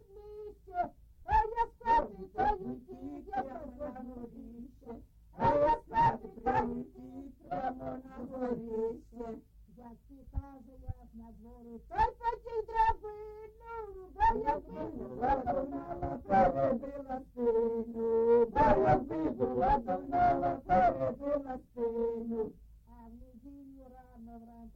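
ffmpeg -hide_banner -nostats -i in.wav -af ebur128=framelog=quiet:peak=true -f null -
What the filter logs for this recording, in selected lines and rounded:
Integrated loudness:
  I:         -32.4 LUFS
  Threshold: -44.1 LUFS
Loudness range:
  LRA:        11.2 LU
  Threshold: -53.8 LUFS
  LRA low:   -40.9 LUFS
  LRA high:  -29.7 LUFS
True peak:
  Peak:      -14.5 dBFS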